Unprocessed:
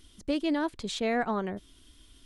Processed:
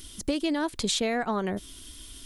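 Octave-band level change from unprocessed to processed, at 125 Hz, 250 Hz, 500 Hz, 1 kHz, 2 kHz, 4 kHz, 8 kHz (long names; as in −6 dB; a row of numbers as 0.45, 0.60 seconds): +4.0, +1.5, +1.5, +1.0, +1.5, +7.0, +12.0 decibels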